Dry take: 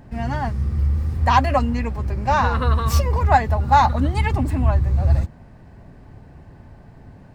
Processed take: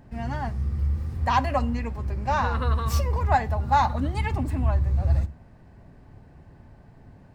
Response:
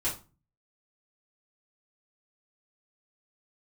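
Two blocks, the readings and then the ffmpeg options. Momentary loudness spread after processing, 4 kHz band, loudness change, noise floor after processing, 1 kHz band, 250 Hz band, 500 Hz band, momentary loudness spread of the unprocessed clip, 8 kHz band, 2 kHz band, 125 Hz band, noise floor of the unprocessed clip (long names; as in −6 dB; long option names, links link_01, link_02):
7 LU, −6.0 dB, −6.0 dB, −51 dBFS, −6.0 dB, −6.0 dB, −6.0 dB, 8 LU, −6.0 dB, −6.0 dB, −5.5 dB, −45 dBFS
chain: -filter_complex "[0:a]asplit=2[link_01][link_02];[1:a]atrim=start_sample=2205,adelay=27[link_03];[link_02][link_03]afir=irnorm=-1:irlink=0,volume=-25dB[link_04];[link_01][link_04]amix=inputs=2:normalize=0,volume=-6dB"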